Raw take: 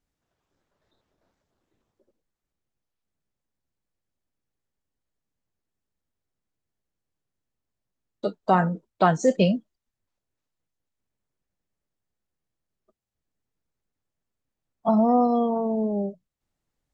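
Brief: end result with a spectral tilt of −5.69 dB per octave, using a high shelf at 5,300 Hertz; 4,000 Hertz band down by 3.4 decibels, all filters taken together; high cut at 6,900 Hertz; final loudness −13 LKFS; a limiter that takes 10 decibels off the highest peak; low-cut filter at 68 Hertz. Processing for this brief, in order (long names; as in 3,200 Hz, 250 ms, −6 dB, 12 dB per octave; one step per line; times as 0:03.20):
high-pass filter 68 Hz
low-pass filter 6,900 Hz
parametric band 4,000 Hz −3.5 dB
high-shelf EQ 5,300 Hz −3.5 dB
level +13.5 dB
brickwall limiter −3 dBFS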